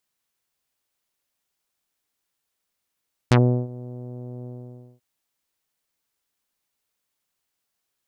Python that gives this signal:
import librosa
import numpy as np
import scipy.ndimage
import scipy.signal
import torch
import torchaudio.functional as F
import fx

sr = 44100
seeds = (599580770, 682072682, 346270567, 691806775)

y = fx.sub_voice(sr, note=47, wave='saw', cutoff_hz=600.0, q=0.89, env_oct=4.5, env_s=0.08, attack_ms=2.6, decay_s=0.36, sustain_db=-22, release_s=0.55, note_s=1.14, slope=24)